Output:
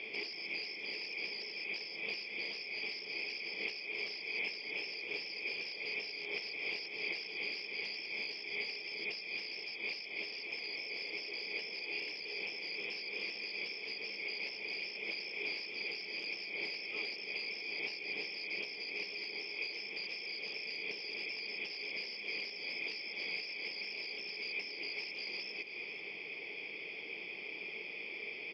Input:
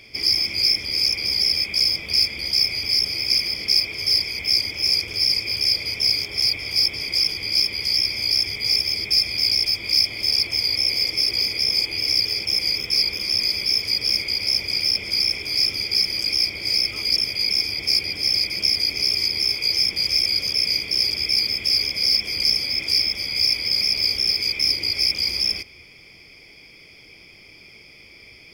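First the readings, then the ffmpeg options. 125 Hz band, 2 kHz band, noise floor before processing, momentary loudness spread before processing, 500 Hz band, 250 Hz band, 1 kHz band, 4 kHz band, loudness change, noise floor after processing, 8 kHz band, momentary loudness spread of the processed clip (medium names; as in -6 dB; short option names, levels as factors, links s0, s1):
under -25 dB, -8.5 dB, -47 dBFS, 2 LU, -7.0 dB, -13.5 dB, no reading, -24.0 dB, -20.5 dB, -46 dBFS, under -30 dB, 3 LU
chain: -filter_complex "[0:a]acompressor=threshold=0.0251:ratio=16,aeval=exprs='0.0335*(abs(mod(val(0)/0.0335+3,4)-2)-1)':c=same,highpass=f=200:w=0.5412,highpass=f=200:w=1.3066,equalizer=f=260:t=q:w=4:g=-5,equalizer=f=430:t=q:w=4:g=8,equalizer=f=830:t=q:w=4:g=4,equalizer=f=1400:t=q:w=4:g=-7,equalizer=f=2700:t=q:w=4:g=9,lowpass=f=3800:w=0.5412,lowpass=f=3800:w=1.3066,asplit=2[s0][s1];[s1]aecho=0:1:484:0.224[s2];[s0][s2]amix=inputs=2:normalize=0"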